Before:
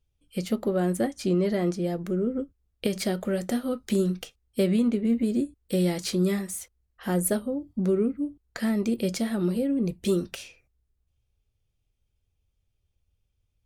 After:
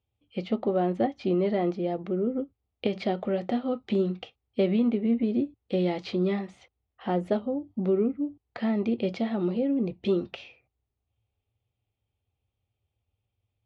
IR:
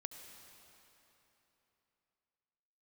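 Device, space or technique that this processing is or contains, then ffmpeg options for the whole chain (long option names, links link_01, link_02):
guitar cabinet: -af "highpass=100,equalizer=frequency=110:width_type=q:width=4:gain=6,equalizer=frequency=160:width_type=q:width=4:gain=-8,equalizer=frequency=770:width_type=q:width=4:gain=7,equalizer=frequency=1600:width_type=q:width=4:gain=-8,lowpass=frequency=3500:width=0.5412,lowpass=frequency=3500:width=1.3066"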